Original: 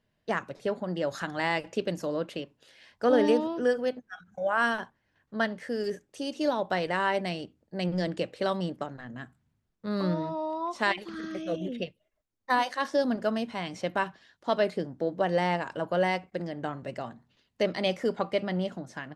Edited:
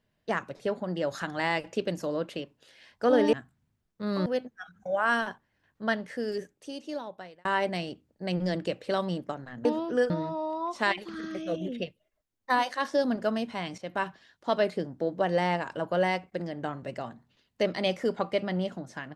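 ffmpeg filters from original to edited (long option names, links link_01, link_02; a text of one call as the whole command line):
ffmpeg -i in.wav -filter_complex "[0:a]asplit=7[link_01][link_02][link_03][link_04][link_05][link_06][link_07];[link_01]atrim=end=3.332[link_08];[link_02]atrim=start=9.168:end=10.102[link_09];[link_03]atrim=start=3.778:end=6.97,asetpts=PTS-STARTPTS,afade=type=out:start_time=1.882:duration=1.31[link_10];[link_04]atrim=start=6.97:end=9.172,asetpts=PTS-STARTPTS,afade=type=in:duration=0.004:curve=hsin[link_11];[link_05]atrim=start=3.328:end=3.782[link_12];[link_06]atrim=start=10.098:end=13.78,asetpts=PTS-STARTPTS,afade=type=out:start_time=3.678:duration=0.004:curve=hsin:silence=0.251189[link_13];[link_07]atrim=start=13.78,asetpts=PTS-STARTPTS,afade=type=in:duration=0.29:silence=0.251189[link_14];[link_08][link_09]acrossfade=duration=0.004:curve1=hsin:curve2=hsin[link_15];[link_10][link_11]concat=n=2:v=0:a=1[link_16];[link_15][link_16]acrossfade=duration=0.004:curve1=hsin:curve2=hsin[link_17];[link_17][link_12]acrossfade=duration=0.004:curve1=hsin:curve2=hsin[link_18];[link_13][link_14]concat=n=2:v=0:a=1[link_19];[link_18][link_19]acrossfade=duration=0.004:curve1=hsin:curve2=hsin" out.wav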